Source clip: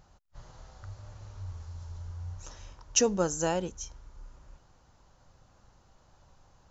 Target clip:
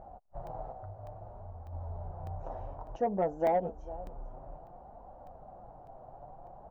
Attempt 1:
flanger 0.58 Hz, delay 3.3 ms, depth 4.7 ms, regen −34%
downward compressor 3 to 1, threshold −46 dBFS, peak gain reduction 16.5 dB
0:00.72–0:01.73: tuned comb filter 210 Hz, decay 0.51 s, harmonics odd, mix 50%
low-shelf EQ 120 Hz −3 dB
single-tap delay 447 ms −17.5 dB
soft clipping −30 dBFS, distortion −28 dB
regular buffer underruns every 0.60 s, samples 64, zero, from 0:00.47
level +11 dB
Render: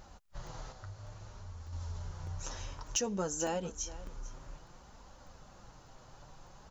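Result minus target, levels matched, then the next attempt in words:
1,000 Hz band −6.0 dB
flanger 0.58 Hz, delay 3.3 ms, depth 4.7 ms, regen −34%
downward compressor 3 to 1, threshold −46 dBFS, peak gain reduction 16.5 dB
low-pass with resonance 710 Hz, resonance Q 6.6
0:00.72–0:01.73: tuned comb filter 210 Hz, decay 0.51 s, harmonics odd, mix 50%
low-shelf EQ 120 Hz −3 dB
single-tap delay 447 ms −17.5 dB
soft clipping −30 dBFS, distortion −20 dB
regular buffer underruns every 0.60 s, samples 64, zero, from 0:00.47
level +11 dB

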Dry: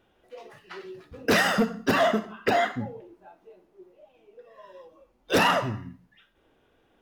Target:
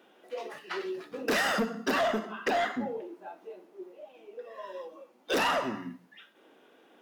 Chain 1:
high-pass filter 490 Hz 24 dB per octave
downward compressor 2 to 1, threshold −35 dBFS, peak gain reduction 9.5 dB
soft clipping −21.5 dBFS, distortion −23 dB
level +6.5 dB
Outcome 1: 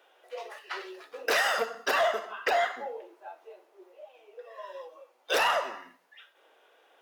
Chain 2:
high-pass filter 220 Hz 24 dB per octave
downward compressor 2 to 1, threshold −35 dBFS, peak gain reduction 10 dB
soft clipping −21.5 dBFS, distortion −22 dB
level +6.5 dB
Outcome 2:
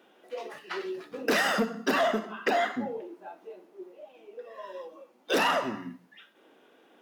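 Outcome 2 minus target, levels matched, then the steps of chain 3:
soft clipping: distortion −9 dB
high-pass filter 220 Hz 24 dB per octave
downward compressor 2 to 1, threshold −35 dBFS, peak gain reduction 10 dB
soft clipping −28 dBFS, distortion −13 dB
level +6.5 dB

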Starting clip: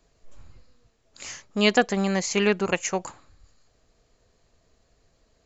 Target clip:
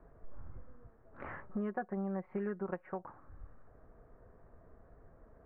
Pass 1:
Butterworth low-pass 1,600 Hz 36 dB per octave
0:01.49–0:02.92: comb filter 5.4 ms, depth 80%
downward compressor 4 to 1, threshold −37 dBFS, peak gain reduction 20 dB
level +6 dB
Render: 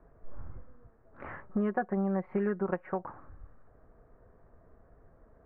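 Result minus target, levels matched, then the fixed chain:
downward compressor: peak gain reduction −7 dB
Butterworth low-pass 1,600 Hz 36 dB per octave
0:01.49–0:02.92: comb filter 5.4 ms, depth 80%
downward compressor 4 to 1, threshold −46.5 dBFS, peak gain reduction 27 dB
level +6 dB

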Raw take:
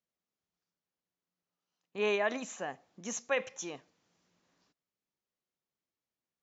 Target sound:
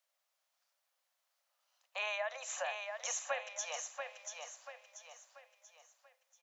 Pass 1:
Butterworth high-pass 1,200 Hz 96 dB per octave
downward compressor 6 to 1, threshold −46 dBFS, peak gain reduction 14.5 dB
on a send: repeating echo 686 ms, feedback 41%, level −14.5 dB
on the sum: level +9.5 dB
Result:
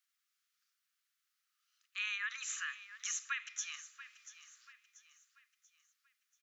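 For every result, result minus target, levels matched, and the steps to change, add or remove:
1,000 Hz band −9.0 dB; echo-to-direct −9 dB
change: Butterworth high-pass 530 Hz 96 dB per octave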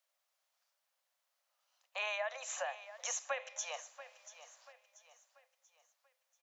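echo-to-direct −9 dB
change: repeating echo 686 ms, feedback 41%, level −5.5 dB

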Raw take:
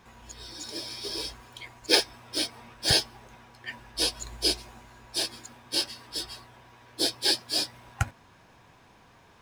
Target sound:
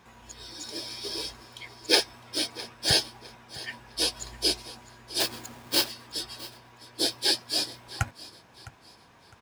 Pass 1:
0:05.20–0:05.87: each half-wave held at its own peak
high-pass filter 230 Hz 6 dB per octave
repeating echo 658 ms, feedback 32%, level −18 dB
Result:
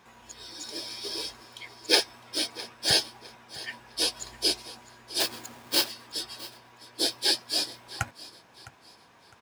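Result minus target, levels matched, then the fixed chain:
125 Hz band −5.5 dB
0:05.20–0:05.87: each half-wave held at its own peak
high-pass filter 69 Hz 6 dB per octave
repeating echo 658 ms, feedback 32%, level −18 dB

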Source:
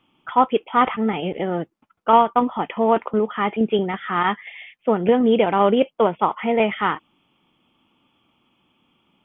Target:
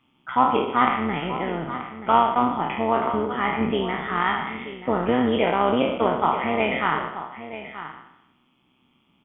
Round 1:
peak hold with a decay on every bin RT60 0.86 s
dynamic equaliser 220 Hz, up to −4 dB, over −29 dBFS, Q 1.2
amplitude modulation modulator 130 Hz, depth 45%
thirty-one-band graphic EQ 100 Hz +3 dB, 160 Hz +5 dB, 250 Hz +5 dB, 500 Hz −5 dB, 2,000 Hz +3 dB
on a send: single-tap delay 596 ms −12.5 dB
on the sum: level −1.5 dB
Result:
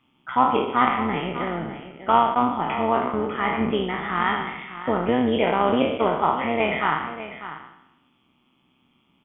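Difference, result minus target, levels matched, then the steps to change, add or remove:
echo 335 ms early
change: single-tap delay 931 ms −12.5 dB

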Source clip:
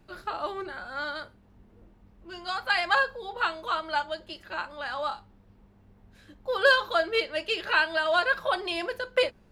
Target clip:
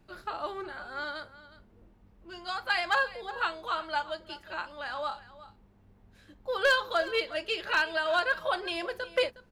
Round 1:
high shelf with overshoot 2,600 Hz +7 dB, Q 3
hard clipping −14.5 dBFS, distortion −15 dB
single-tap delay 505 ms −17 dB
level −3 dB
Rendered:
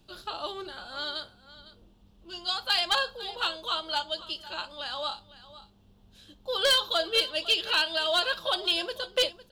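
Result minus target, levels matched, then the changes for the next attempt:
echo 142 ms late; 4,000 Hz band +7.5 dB
change: single-tap delay 363 ms −17 dB
remove: high shelf with overshoot 2,600 Hz +7 dB, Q 3

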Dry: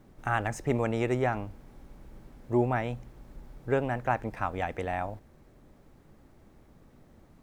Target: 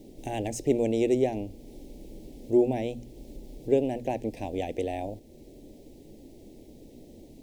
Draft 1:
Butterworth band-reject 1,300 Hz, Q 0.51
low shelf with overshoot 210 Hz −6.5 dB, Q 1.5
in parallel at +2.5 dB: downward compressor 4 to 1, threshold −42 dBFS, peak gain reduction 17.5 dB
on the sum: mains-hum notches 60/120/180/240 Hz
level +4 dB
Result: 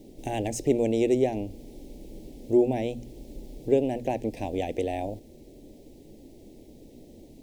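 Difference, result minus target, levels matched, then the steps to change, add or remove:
downward compressor: peak gain reduction −7.5 dB
change: downward compressor 4 to 1, threshold −52 dBFS, peak gain reduction 25 dB

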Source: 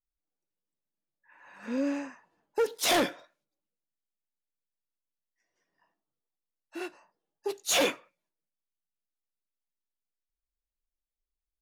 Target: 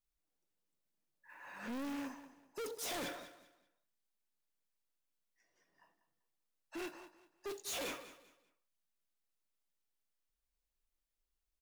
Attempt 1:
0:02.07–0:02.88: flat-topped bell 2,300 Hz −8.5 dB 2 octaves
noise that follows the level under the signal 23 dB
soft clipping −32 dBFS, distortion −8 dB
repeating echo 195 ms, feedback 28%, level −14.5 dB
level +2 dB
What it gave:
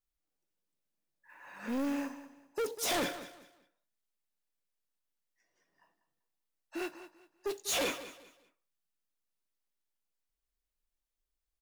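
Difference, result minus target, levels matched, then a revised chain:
soft clipping: distortion −5 dB
0:02.07–0:02.88: flat-topped bell 2,300 Hz −8.5 dB 2 octaves
noise that follows the level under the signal 23 dB
soft clipping −42 dBFS, distortion −3 dB
repeating echo 195 ms, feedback 28%, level −14.5 dB
level +2 dB

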